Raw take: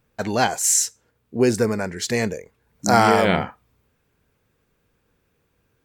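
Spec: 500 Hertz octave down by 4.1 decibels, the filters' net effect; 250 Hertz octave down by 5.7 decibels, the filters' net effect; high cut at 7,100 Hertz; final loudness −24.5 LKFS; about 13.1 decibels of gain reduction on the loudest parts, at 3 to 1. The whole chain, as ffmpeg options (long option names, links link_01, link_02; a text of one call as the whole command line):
ffmpeg -i in.wav -af "lowpass=7100,equalizer=frequency=250:width_type=o:gain=-6.5,equalizer=frequency=500:width_type=o:gain=-3.5,acompressor=threshold=-31dB:ratio=3,volume=8.5dB" out.wav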